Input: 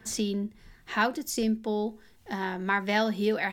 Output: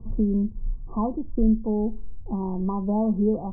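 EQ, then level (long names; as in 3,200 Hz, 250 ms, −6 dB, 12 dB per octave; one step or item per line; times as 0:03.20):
linear-phase brick-wall low-pass 1,200 Hz
spectral tilt −4 dB per octave
low-shelf EQ 110 Hz +11.5 dB
−4.0 dB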